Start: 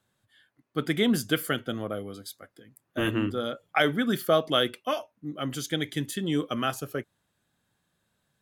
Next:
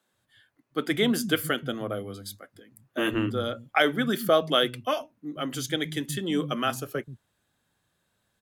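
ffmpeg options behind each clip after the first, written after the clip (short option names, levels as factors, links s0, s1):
-filter_complex "[0:a]acrossover=split=180[s0][s1];[s0]adelay=130[s2];[s2][s1]amix=inputs=2:normalize=0,volume=1.19"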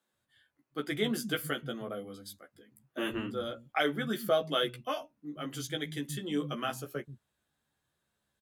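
-filter_complex "[0:a]asplit=2[s0][s1];[s1]adelay=14,volume=0.631[s2];[s0][s2]amix=inputs=2:normalize=0,volume=0.376"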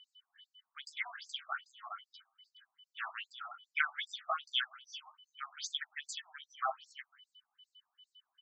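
-filter_complex "[0:a]aeval=exprs='val(0)+0.00112*sin(2*PI*3000*n/s)':c=same,asplit=2[s0][s1];[s1]adelay=180,highpass=300,lowpass=3400,asoftclip=type=hard:threshold=0.0596,volume=0.0631[s2];[s0][s2]amix=inputs=2:normalize=0,afftfilt=real='re*between(b*sr/1024,900*pow(6100/900,0.5+0.5*sin(2*PI*2.5*pts/sr))/1.41,900*pow(6100/900,0.5+0.5*sin(2*PI*2.5*pts/sr))*1.41)':imag='im*between(b*sr/1024,900*pow(6100/900,0.5+0.5*sin(2*PI*2.5*pts/sr))/1.41,900*pow(6100/900,0.5+0.5*sin(2*PI*2.5*pts/sr))*1.41)':win_size=1024:overlap=0.75,volume=1.5"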